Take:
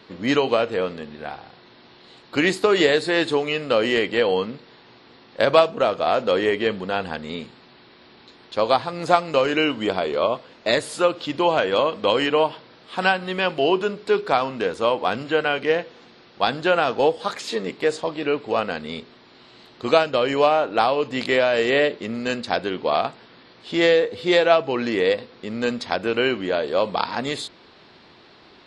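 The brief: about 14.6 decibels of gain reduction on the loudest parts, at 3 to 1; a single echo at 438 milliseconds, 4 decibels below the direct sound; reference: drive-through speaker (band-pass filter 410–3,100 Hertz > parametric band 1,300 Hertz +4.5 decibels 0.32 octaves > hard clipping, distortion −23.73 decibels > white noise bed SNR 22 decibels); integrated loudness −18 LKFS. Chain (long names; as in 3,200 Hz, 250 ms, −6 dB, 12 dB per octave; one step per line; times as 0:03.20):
downward compressor 3 to 1, threshold −31 dBFS
band-pass filter 410–3,100 Hz
parametric band 1,300 Hz +4.5 dB 0.32 octaves
single-tap delay 438 ms −4 dB
hard clipping −21 dBFS
white noise bed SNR 22 dB
level +15 dB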